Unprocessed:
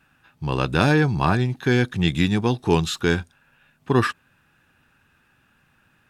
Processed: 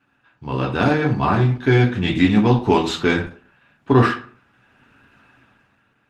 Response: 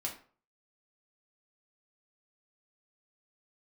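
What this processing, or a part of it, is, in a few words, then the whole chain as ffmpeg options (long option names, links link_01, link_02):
far-field microphone of a smart speaker: -filter_complex "[0:a]aemphasis=mode=reproduction:type=50fm[link_01];[1:a]atrim=start_sample=2205[link_02];[link_01][link_02]afir=irnorm=-1:irlink=0,highpass=110,dynaudnorm=framelen=130:gausssize=11:maxgain=12.5dB,volume=-1dB" -ar 48000 -c:a libopus -b:a 16k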